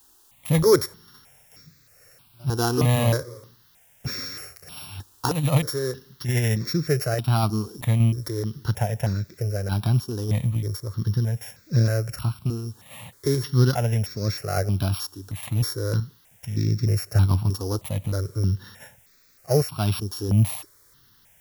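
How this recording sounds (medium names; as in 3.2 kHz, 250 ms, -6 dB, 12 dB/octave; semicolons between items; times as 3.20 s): a buzz of ramps at a fixed pitch in blocks of 8 samples; random-step tremolo; a quantiser's noise floor 10-bit, dither triangular; notches that jump at a steady rate 3.2 Hz 590–3000 Hz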